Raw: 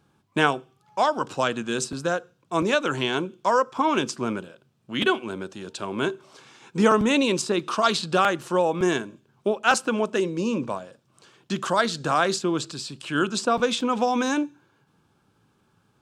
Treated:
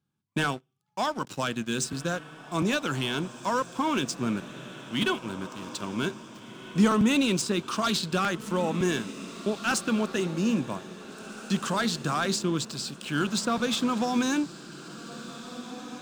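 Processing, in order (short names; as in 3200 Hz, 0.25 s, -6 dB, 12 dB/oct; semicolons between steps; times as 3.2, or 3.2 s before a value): passive tone stack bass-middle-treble 5-5-5; sample leveller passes 3; bell 200 Hz +12.5 dB 2.7 oct; on a send: diffused feedback echo 1.829 s, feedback 43%, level -13.5 dB; on the sum: gain -4.5 dB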